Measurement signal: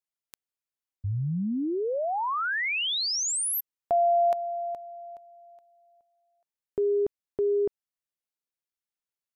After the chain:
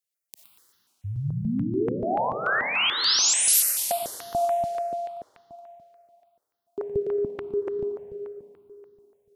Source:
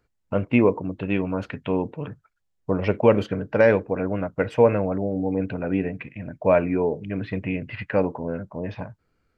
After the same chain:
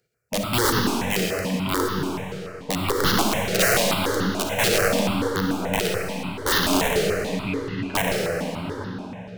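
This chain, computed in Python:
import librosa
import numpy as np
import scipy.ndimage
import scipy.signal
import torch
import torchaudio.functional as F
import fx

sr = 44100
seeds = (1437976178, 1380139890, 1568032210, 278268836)

p1 = scipy.signal.sosfilt(scipy.signal.butter(2, 97.0, 'highpass', fs=sr, output='sos'), x)
p2 = fx.high_shelf(p1, sr, hz=3400.0, db=5.5)
p3 = p2 + fx.echo_feedback(p2, sr, ms=118, feedback_pct=46, wet_db=-9.0, dry=0)
p4 = (np.mod(10.0 ** (14.5 / 20.0) * p3 + 1.0, 2.0) - 1.0) / 10.0 ** (14.5 / 20.0)
p5 = fx.rev_freeverb(p4, sr, rt60_s=3.0, hf_ratio=0.9, predelay_ms=15, drr_db=-0.5)
p6 = fx.phaser_held(p5, sr, hz=6.9, low_hz=270.0, high_hz=2400.0)
y = p6 * 10.0 ** (1.5 / 20.0)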